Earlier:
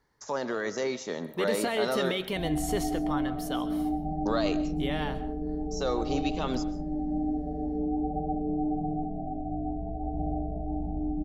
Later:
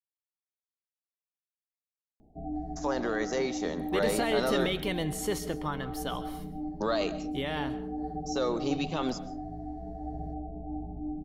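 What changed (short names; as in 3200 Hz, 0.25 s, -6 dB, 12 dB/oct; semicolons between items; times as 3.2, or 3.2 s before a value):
speech: entry +2.55 s; background: send off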